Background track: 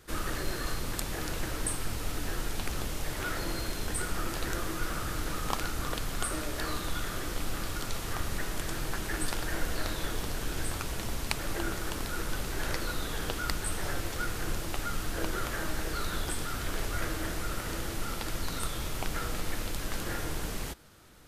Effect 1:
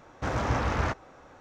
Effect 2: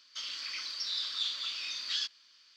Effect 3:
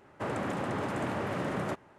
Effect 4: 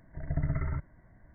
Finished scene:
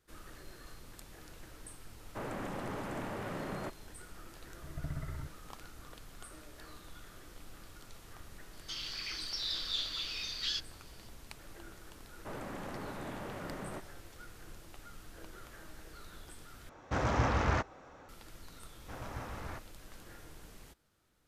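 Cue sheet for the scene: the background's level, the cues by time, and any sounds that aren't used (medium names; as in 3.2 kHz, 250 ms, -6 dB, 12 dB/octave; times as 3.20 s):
background track -18 dB
1.95 s: add 3 -7 dB
4.47 s: add 4 -9.5 dB
8.53 s: add 2 -2 dB
12.05 s: add 3 -10 dB
16.69 s: replace with 1 -2.5 dB
18.66 s: add 1 -16 dB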